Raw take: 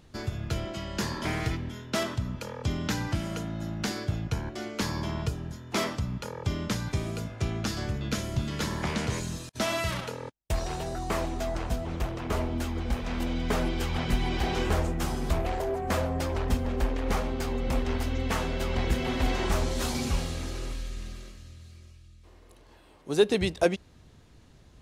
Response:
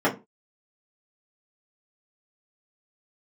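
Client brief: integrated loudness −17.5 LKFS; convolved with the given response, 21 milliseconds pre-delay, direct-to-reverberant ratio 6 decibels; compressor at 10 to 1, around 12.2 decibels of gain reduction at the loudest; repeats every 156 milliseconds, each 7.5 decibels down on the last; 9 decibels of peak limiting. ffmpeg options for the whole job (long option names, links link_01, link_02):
-filter_complex "[0:a]acompressor=threshold=-29dB:ratio=10,alimiter=level_in=3.5dB:limit=-24dB:level=0:latency=1,volume=-3.5dB,aecho=1:1:156|312|468|624|780:0.422|0.177|0.0744|0.0312|0.0131,asplit=2[link_01][link_02];[1:a]atrim=start_sample=2205,adelay=21[link_03];[link_02][link_03]afir=irnorm=-1:irlink=0,volume=-22.5dB[link_04];[link_01][link_04]amix=inputs=2:normalize=0,volume=18dB"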